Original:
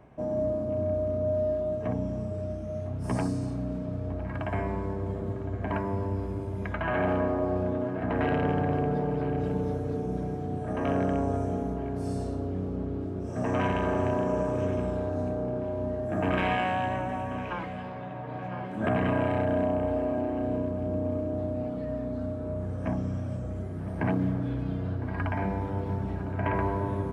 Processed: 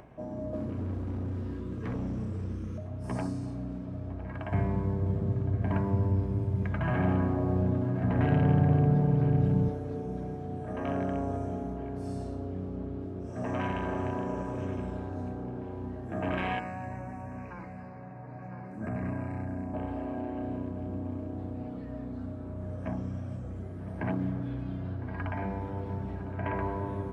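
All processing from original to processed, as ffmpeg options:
-filter_complex "[0:a]asettb=1/sr,asplit=3[a][b][c];[a]atrim=end=0.534[d];[b]atrim=start=0.53:end=2.78,asetpts=PTS-STARTPTS,afade=t=in:d=0.004:c=qsin,afade=t=out:st=2.246:d=0.004:c=qsin,asuperstop=centerf=730:order=12:qfactor=1.8,volume=32dB,asoftclip=hard,volume=-32dB,acontrast=51[e];[c]atrim=start=2.776[f];[d][e]acrossfade=d=0.004:c1=hsin:c2=qsin[g];[g][f]acrossfade=d=0.004:c1=qsin:c2=hsin,asettb=1/sr,asplit=3[h][i][j];[h]atrim=end=4.524[k];[i]atrim=start=4.52:end=9.69,asetpts=PTS-STARTPTS,afade=t=in:d=0.004:c=qsin,afade=t=out:st=5.166:d=0.004:c=qsin,aeval=exprs='sgn(val(0))*max(abs(val(0))-0.00133,0)':c=same,equalizer=f=130:t=o:w=1.4:g=14[l];[j]atrim=start=9.686[m];[k][l]acrossfade=d=0.004:c1=hsin:c2=qsin[n];[n][m]acrossfade=d=0.004:c1=qsin:c2=hsin,asettb=1/sr,asplit=3[o][p][q];[o]atrim=end=16.594[r];[p]atrim=start=16.59:end=19.74,asetpts=PTS-STARTPTS,afade=t=in:d=0.004:c=qsin,afade=t=out:st=3.146:d=0.004:c=qsin,asuperstop=centerf=3300:order=4:qfactor=1.5,acrossover=split=270|3000[s][t][u];[t]acompressor=threshold=-49dB:ratio=1.5:attack=3.2:release=140:knee=2.83:detection=peak[v];[s][v][u]amix=inputs=3:normalize=0[w];[q]atrim=start=19.736[x];[r][w]acrossfade=d=0.004:c1=hsin:c2=qsin[y];[y][x]acrossfade=d=0.004:c1=qsin:c2=hsin,highshelf=f=6.1k:g=-4.5,bandreject=f=51.34:t=h:w=4,bandreject=f=102.68:t=h:w=4,bandreject=f=154.02:t=h:w=4,bandreject=f=205.36:t=h:w=4,bandreject=f=256.7:t=h:w=4,bandreject=f=308.04:t=h:w=4,bandreject=f=359.38:t=h:w=4,bandreject=f=410.72:t=h:w=4,bandreject=f=462.06:t=h:w=4,bandreject=f=513.4:t=h:w=4,bandreject=f=564.74:t=h:w=4,bandreject=f=616.08:t=h:w=4,bandreject=f=667.42:t=h:w=4,bandreject=f=718.76:t=h:w=4,bandreject=f=770.1:t=h:w=4,bandreject=f=821.44:t=h:w=4,bandreject=f=872.78:t=h:w=4,bandreject=f=924.12:t=h:w=4,bandreject=f=975.46:t=h:w=4,bandreject=f=1.0268k:t=h:w=4,bandreject=f=1.07814k:t=h:w=4,bandreject=f=1.12948k:t=h:w=4,bandreject=f=1.18082k:t=h:w=4,bandreject=f=1.23216k:t=h:w=4,bandreject=f=1.2835k:t=h:w=4,bandreject=f=1.33484k:t=h:w=4,bandreject=f=1.38618k:t=h:w=4,bandreject=f=1.43752k:t=h:w=4,bandreject=f=1.48886k:t=h:w=4,acompressor=mode=upward:threshold=-41dB:ratio=2.5,volume=-4dB"

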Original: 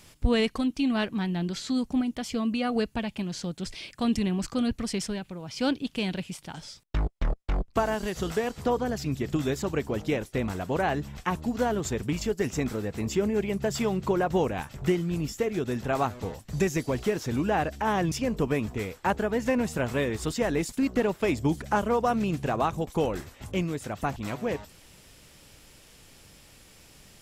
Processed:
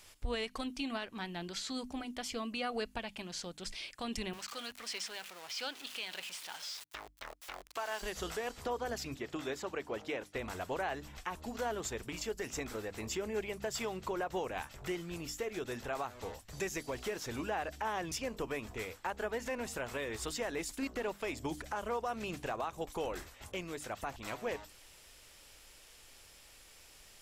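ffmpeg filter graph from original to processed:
-filter_complex "[0:a]asettb=1/sr,asplit=3[a][b][c];[a]atrim=end=4.334[d];[b]atrim=start=4.33:end=8.02,asetpts=PTS-STARTPTS,afade=t=in:d=0.004:c=qsin,afade=t=out:st=3.686:d=0.004:c=qsin,aeval=exprs='val(0)+0.5*0.0178*sgn(val(0))':c=same,acrossover=split=5600[e][f];[f]acompressor=threshold=-46dB:ratio=4:attack=1:release=60[g];[e][g]amix=inputs=2:normalize=0,highpass=f=1.2k:p=1[h];[c]atrim=start=8.016[i];[d][h]acrossfade=d=0.004:c1=hsin:c2=qsin[j];[j][i]acrossfade=d=0.004:c1=qsin:c2=hsin,asettb=1/sr,asplit=3[k][l][m];[k]atrim=end=9.144[n];[l]atrim=start=9.14:end=10.36,asetpts=PTS-STARTPTS,afade=t=in:d=0.004:c=qsin,afade=t=out:st=1.216:d=0.004:c=qsin,highpass=f=200:p=1,aemphasis=mode=reproduction:type=cd[o];[m]atrim=start=10.356[p];[n][o]acrossfade=d=0.004:c1=hsin:c2=qsin[q];[q][p]acrossfade=d=0.004:c1=qsin:c2=hsin,equalizer=f=160:w=0.6:g=-13.5,bandreject=f=50:t=h:w=6,bandreject=f=100:t=h:w=6,bandreject=f=150:t=h:w=6,bandreject=f=200:t=h:w=6,bandreject=f=250:t=h:w=6,bandreject=f=300:t=h:w=6,alimiter=limit=-24dB:level=0:latency=1:release=149,volume=-3dB"

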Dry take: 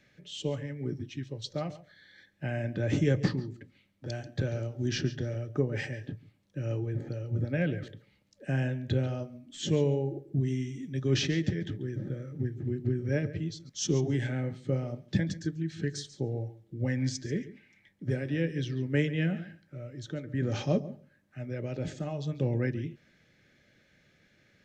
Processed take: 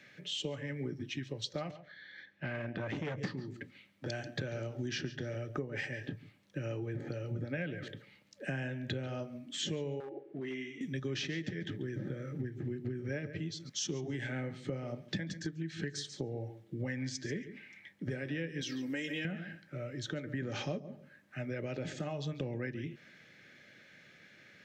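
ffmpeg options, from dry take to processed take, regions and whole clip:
-filter_complex "[0:a]asettb=1/sr,asplit=3[a][b][c];[a]atrim=end=1.714[d];[b]atrim=start=1.71:end=3.18,asetpts=PTS-STARTPTS,afade=t=in:d=0.004:c=qsin,afade=t=out:st=1.466:d=0.004:c=qsin,lowpass=4.2k,aeval=exprs='(tanh(20*val(0)+0.6)-tanh(0.6))/20':c=same[e];[c]atrim=start=3.176[f];[d][e]acrossfade=d=0.004:c1=hsin:c2=qsin[g];[g][f]acrossfade=d=0.004:c1=qsin:c2=hsin,asettb=1/sr,asplit=3[h][i][j];[h]atrim=end=10.004[k];[i]atrim=start=10:end=10.81,asetpts=PTS-STARTPTS,afade=t=in:d=0.004:c=qsin,afade=t=out:st=0.806:d=0.004:c=qsin,highpass=460,lowpass=2.5k,asoftclip=type=hard:threshold=-35dB[l];[j]atrim=start=10.806[m];[k][l]acrossfade=d=0.004:c1=hsin:c2=qsin[n];[n][m]acrossfade=d=0.004:c1=qsin:c2=hsin,asettb=1/sr,asplit=3[o][p][q];[o]atrim=end=18.614[r];[p]atrim=start=18.61:end=19.25,asetpts=PTS-STARTPTS,afade=t=in:d=0.004:c=qsin,afade=t=out:st=0.636:d=0.004:c=qsin,bass=f=250:g=-2,treble=f=4k:g=14,aecho=1:1:3.7:0.69,atrim=end_sample=28224,acompressor=threshold=-32dB:ratio=6:attack=3.2:release=140:knee=1:detection=peak[s];[q]atrim=start=19.246[t];[r][s]acrossfade=d=0.004:c1=hsin:c2=qsin[u];[u][t]acrossfade=d=0.004:c1=qsin:c2=hsin,highpass=130,equalizer=f=2k:w=0.62:g=6,acompressor=threshold=-38dB:ratio=6,volume=3dB"

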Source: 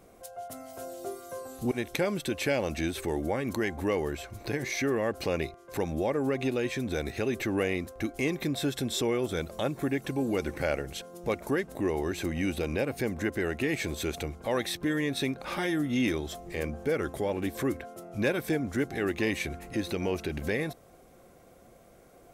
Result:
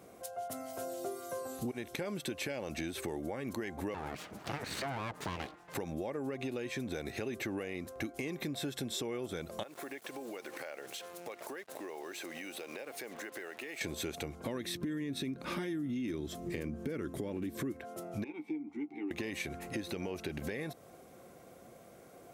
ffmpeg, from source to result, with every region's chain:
-filter_complex "[0:a]asettb=1/sr,asplit=3[a][b][c];[a]atrim=end=3.944[d];[b]atrim=start=3.94:end=5.75,asetpts=PTS-STARTPTS,afade=t=in:d=0.004:c=qsin,afade=t=out:st=1.806:d=0.004:c=qsin,aeval=exprs='abs(val(0))':c=same,highshelf=f=5.9k:g=-7.5[e];[c]atrim=start=5.746[f];[d][e]acrossfade=d=0.004:c1=hsin:c2=qsin[g];[g][f]acrossfade=d=0.004:c1=qsin:c2=hsin,asettb=1/sr,asplit=3[h][i][j];[h]atrim=end=9.634[k];[i]atrim=start=9.63:end=13.81,asetpts=PTS-STARTPTS,afade=t=in:d=0.004:c=qsin,afade=t=out:st=4.176:d=0.004:c=qsin,highpass=480,acrusher=bits=7:mix=0:aa=0.5,acompressor=threshold=-40dB:ratio=12:attack=3.2:release=140:knee=1:detection=peak[l];[j]atrim=start=13.806[m];[k][l]acrossfade=d=0.004:c1=hsin:c2=qsin[n];[n][m]acrossfade=d=0.004:c1=qsin:c2=hsin,asettb=1/sr,asplit=3[o][p][q];[o]atrim=end=14.454[r];[p]atrim=start=14.45:end=17.72,asetpts=PTS-STARTPTS,afade=t=in:d=0.004:c=qsin,afade=t=out:st=3.266:d=0.004:c=qsin,lowshelf=f=410:t=q:w=1.5:g=6.5,bandreject=f=790:w=8.8[s];[q]atrim=start=17.716[t];[r][s]acrossfade=d=0.004:c1=hsin:c2=qsin[u];[u][t]acrossfade=d=0.004:c1=qsin:c2=hsin,asettb=1/sr,asplit=3[v][w][x];[v]atrim=end=18.244[y];[w]atrim=start=18.24:end=19.11,asetpts=PTS-STARTPTS,afade=t=in:d=0.004:c=qsin,afade=t=out:st=0.866:d=0.004:c=qsin,asplit=3[z][aa][ab];[z]bandpass=f=300:t=q:w=8,volume=0dB[ac];[aa]bandpass=f=870:t=q:w=8,volume=-6dB[ad];[ab]bandpass=f=2.24k:t=q:w=8,volume=-9dB[ae];[ac][ad][ae]amix=inputs=3:normalize=0,lowshelf=f=110:g=-11,asplit=2[af][ag];[ag]adelay=13,volume=-7dB[ah];[af][ah]amix=inputs=2:normalize=0,atrim=end_sample=38367[ai];[x]atrim=start=19.106[aj];[y][ai]acrossfade=d=0.004:c1=hsin:c2=qsin[ak];[ak][aj]acrossfade=d=0.004:c1=qsin:c2=hsin,highpass=100,alimiter=limit=-20dB:level=0:latency=1,acompressor=threshold=-36dB:ratio=6,volume=1dB"

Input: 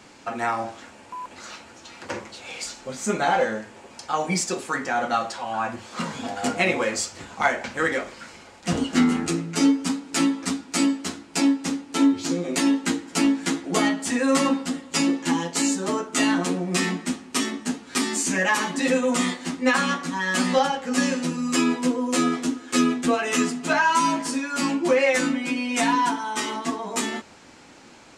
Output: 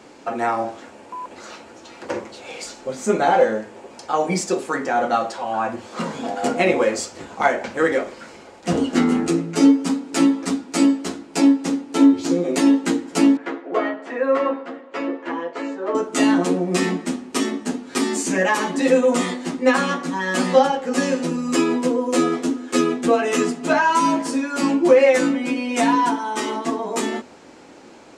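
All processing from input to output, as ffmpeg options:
-filter_complex "[0:a]asettb=1/sr,asplit=3[a][b][c];[a]atrim=end=13.374[d];[b]atrim=start=13.37:end=15.95,asetpts=PTS-STARTPTS,afade=t=in:d=0.004:c=qsin,afade=t=out:st=2.576:d=0.004:c=qsin,asuperpass=centerf=960:order=4:qfactor=0.59,bandreject=f=840:w=10[e];[c]atrim=start=15.946[f];[d][e]acrossfade=d=0.004:c1=hsin:c2=qsin[g];[g][f]acrossfade=d=0.004:c1=qsin:c2=hsin,equalizer=f=430:t=o:w=2.2:g=9.5,bandreject=f=50:t=h:w=6,bandreject=f=100:t=h:w=6,bandreject=f=150:t=h:w=6,bandreject=f=200:t=h:w=6,bandreject=f=250:t=h:w=6,volume=-1.5dB"

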